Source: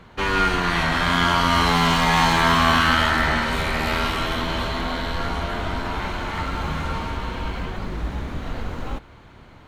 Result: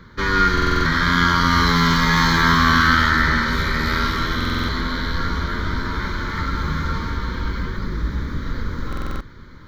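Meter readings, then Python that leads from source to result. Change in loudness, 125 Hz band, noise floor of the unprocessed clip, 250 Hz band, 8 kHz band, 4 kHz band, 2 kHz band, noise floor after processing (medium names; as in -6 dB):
+2.0 dB, +4.0 dB, -46 dBFS, +3.5 dB, 0.0 dB, +0.5 dB, +3.5 dB, -40 dBFS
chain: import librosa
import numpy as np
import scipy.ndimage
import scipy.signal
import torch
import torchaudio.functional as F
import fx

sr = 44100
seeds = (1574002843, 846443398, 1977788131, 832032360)

p1 = fx.fixed_phaser(x, sr, hz=2700.0, stages=6)
p2 = p1 + fx.echo_single(p1, sr, ms=747, db=-20.5, dry=0)
p3 = fx.buffer_glitch(p2, sr, at_s=(0.53, 4.36, 8.88), block=2048, repeats=6)
y = p3 * librosa.db_to_amplitude(4.5)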